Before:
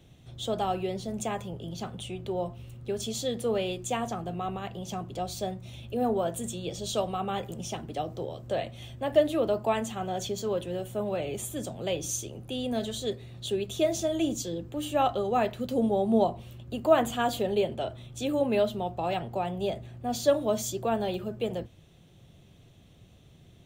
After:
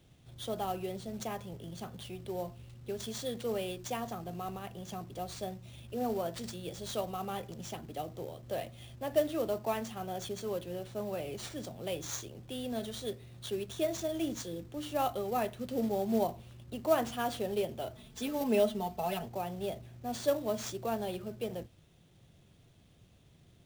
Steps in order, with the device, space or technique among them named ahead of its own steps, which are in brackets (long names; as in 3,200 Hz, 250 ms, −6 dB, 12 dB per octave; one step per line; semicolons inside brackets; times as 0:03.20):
early companding sampler (sample-rate reduction 13,000 Hz, jitter 0%; log-companded quantiser 6 bits)
0:17.95–0:19.26: comb filter 4.6 ms, depth 95%
level −6.5 dB